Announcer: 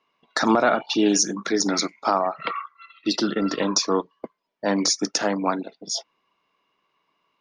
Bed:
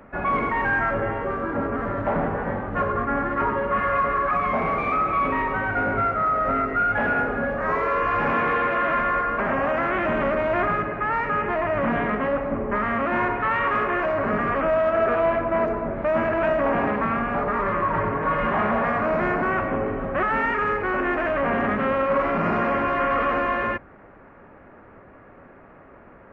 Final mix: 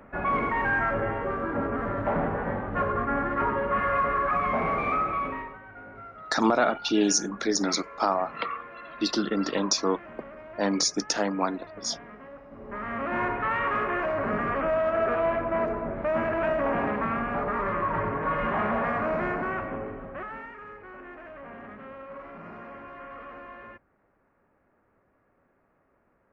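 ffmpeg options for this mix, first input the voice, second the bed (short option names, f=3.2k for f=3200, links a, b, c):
-filter_complex "[0:a]adelay=5950,volume=-3.5dB[a];[1:a]volume=14dB,afade=t=out:st=4.92:d=0.66:silence=0.11885,afade=t=in:st=12.52:d=0.73:silence=0.141254,afade=t=out:st=19.03:d=1.49:silence=0.158489[b];[a][b]amix=inputs=2:normalize=0"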